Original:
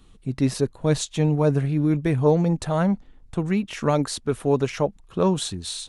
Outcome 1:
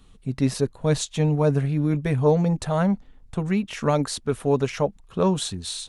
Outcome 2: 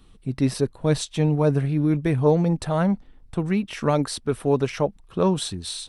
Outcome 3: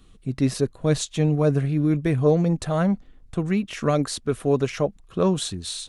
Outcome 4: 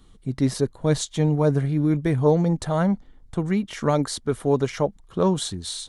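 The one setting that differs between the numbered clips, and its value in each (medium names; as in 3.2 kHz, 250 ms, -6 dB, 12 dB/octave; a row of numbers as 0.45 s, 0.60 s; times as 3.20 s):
band-stop, frequency: 330 Hz, 6.8 kHz, 890 Hz, 2.6 kHz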